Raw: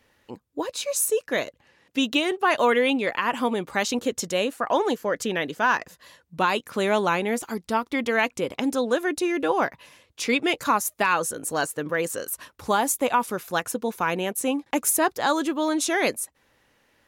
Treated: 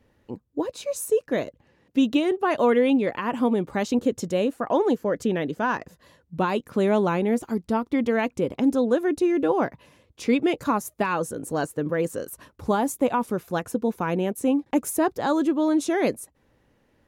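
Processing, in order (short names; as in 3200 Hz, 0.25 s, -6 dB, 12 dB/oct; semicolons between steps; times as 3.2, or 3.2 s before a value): tilt shelf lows +8 dB, about 700 Hz; gain -1 dB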